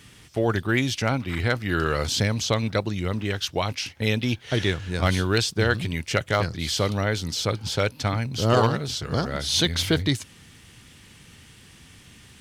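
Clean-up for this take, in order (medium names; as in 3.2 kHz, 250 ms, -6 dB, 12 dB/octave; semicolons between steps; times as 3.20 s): clip repair -9.5 dBFS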